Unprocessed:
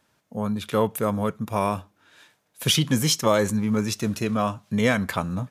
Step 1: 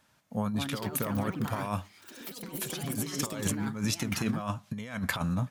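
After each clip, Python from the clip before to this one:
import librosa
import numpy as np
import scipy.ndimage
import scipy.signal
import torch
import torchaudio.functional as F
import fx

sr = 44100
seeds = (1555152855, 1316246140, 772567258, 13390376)

y = fx.peak_eq(x, sr, hz=400.0, db=-7.0, octaves=0.83)
y = fx.over_compress(y, sr, threshold_db=-28.0, ratio=-0.5)
y = fx.echo_pitch(y, sr, ms=308, semitones=5, count=3, db_per_echo=-6.0)
y = y * 10.0 ** (-3.5 / 20.0)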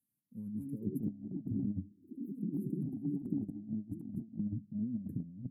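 y = fx.filter_sweep_bandpass(x, sr, from_hz=3600.0, to_hz=290.0, start_s=0.13, end_s=1.07, q=1.7)
y = scipy.signal.sosfilt(scipy.signal.cheby2(4, 50, [650.0, 5800.0], 'bandstop', fs=sr, output='sos'), y)
y = fx.over_compress(y, sr, threshold_db=-44.0, ratio=-0.5)
y = y * 10.0 ** (7.0 / 20.0)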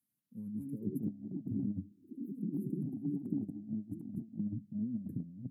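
y = scipy.signal.sosfilt(scipy.signal.butter(2, 95.0, 'highpass', fs=sr, output='sos'), x)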